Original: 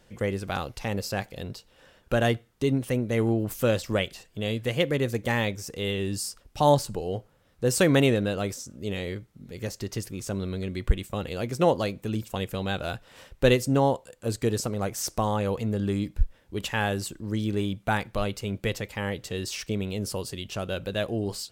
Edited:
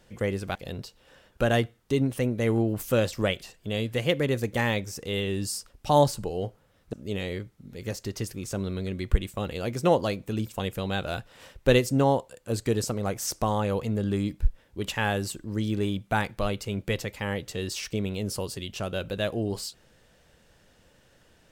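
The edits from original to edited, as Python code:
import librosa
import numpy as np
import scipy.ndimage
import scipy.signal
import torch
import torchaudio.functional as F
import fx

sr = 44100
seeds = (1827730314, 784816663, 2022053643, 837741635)

y = fx.edit(x, sr, fx.cut(start_s=0.55, length_s=0.71),
    fx.cut(start_s=7.64, length_s=1.05), tone=tone)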